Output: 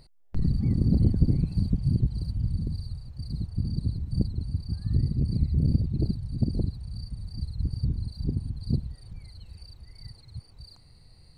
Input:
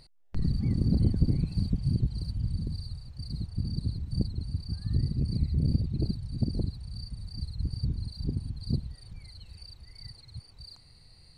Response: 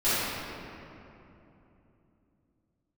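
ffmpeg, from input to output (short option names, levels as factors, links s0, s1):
-af "equalizer=f=4200:w=0.31:g=-6.5,volume=1.41"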